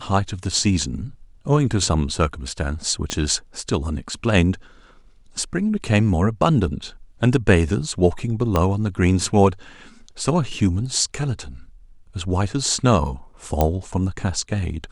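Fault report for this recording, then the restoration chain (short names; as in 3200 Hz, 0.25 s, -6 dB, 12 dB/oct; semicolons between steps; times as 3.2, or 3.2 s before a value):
3.1 pop -9 dBFS
8.56 pop -6 dBFS
13.61 pop -5 dBFS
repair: de-click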